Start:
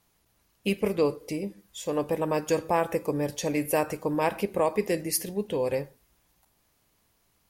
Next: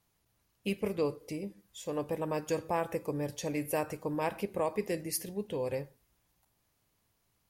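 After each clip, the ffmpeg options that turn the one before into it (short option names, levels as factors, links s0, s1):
-af "equalizer=f=110:w=1.7:g=5,volume=0.447"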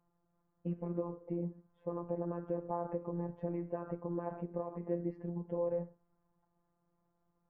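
-af "lowpass=f=1200:w=0.5412,lowpass=f=1200:w=1.3066,alimiter=level_in=2.11:limit=0.0631:level=0:latency=1:release=59,volume=0.473,afftfilt=real='hypot(re,im)*cos(PI*b)':imag='0':win_size=1024:overlap=0.75,volume=1.68"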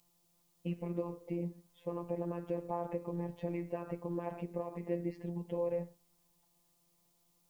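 -af "aexciter=amount=9.4:drive=4:freq=2200"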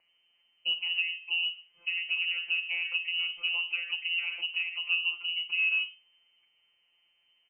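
-filter_complex "[0:a]acrossover=split=640[s0][s1];[s0]aecho=1:1:17|50:0.335|0.398[s2];[s1]asoftclip=type=tanh:threshold=0.0119[s3];[s2][s3]amix=inputs=2:normalize=0,lowpass=f=2600:t=q:w=0.5098,lowpass=f=2600:t=q:w=0.6013,lowpass=f=2600:t=q:w=0.9,lowpass=f=2600:t=q:w=2.563,afreqshift=-3100,volume=1.88"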